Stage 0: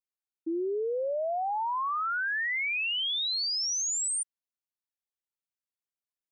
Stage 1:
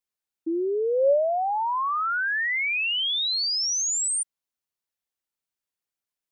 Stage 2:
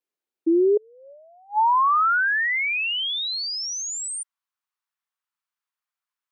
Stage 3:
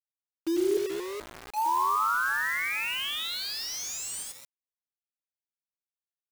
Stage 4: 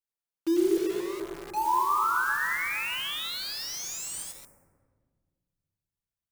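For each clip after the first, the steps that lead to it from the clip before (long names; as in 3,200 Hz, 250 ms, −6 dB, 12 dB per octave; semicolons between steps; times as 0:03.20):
dynamic equaliser 560 Hz, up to +8 dB, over −48 dBFS, Q 5.8; level +4.5 dB
gate with flip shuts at −22 dBFS, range −35 dB; bass and treble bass +10 dB, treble −5 dB; high-pass filter sweep 360 Hz → 1,100 Hz, 0:00.45–0:02.06
on a send: reverse bouncing-ball delay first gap 90 ms, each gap 1.5×, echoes 5; on the sum: bit reduction 5 bits; level −9 dB
on a send at −1.5 dB: Butterworth band-reject 3,600 Hz, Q 0.51 + convolution reverb RT60 1.7 s, pre-delay 6 ms; on the sum: level −1 dB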